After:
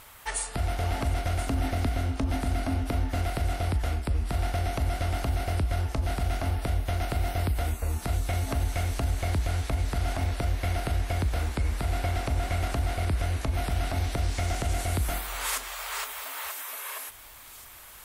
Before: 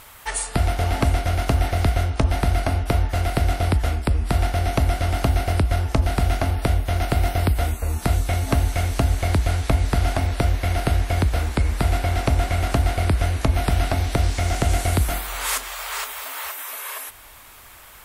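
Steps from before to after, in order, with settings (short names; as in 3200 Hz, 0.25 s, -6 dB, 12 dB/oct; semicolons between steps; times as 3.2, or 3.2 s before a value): 1.46–3.22 bell 260 Hz +11.5 dB 0.36 oct; limiter -13.5 dBFS, peak gain reduction 9 dB; thin delay 1.031 s, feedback 51%, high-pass 3400 Hz, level -13.5 dB; gain -5 dB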